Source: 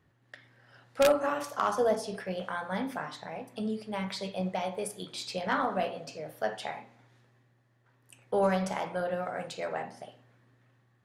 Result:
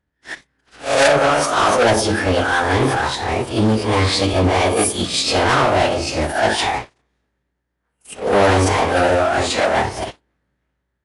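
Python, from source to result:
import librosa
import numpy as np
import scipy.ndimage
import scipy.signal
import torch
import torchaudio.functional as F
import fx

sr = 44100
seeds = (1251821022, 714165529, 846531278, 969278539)

y = fx.spec_swells(x, sr, rise_s=0.37)
y = fx.leveller(y, sr, passes=5)
y = fx.pitch_keep_formants(y, sr, semitones=-12.0)
y = F.gain(torch.from_numpy(y), 3.0).numpy()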